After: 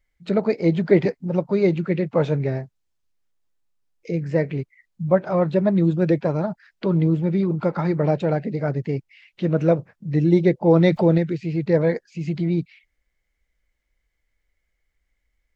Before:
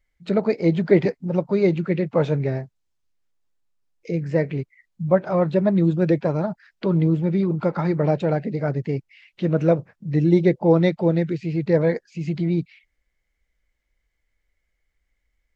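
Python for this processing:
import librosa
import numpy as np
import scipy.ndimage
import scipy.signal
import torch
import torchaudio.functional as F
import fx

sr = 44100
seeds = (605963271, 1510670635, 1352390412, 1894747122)

y = fx.env_flatten(x, sr, amount_pct=50, at=(10.67, 11.18))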